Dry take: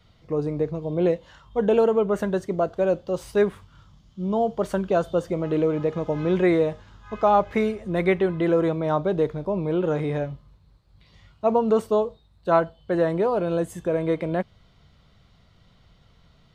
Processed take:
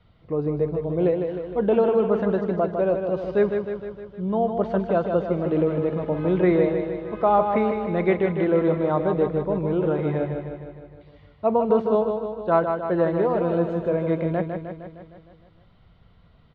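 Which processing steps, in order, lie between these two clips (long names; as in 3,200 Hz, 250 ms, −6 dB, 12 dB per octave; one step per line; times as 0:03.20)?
low-pass filter 4,300 Hz 24 dB per octave
high-shelf EQ 3,200 Hz −10.5 dB
on a send: repeating echo 154 ms, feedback 60%, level −6 dB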